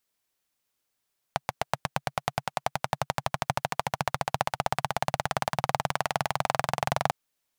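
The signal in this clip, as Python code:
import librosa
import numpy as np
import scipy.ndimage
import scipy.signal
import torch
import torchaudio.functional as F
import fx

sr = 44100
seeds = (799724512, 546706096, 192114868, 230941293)

y = fx.engine_single_rev(sr, seeds[0], length_s=5.75, rpm=900, resonances_hz=(140.0, 740.0), end_rpm=2700)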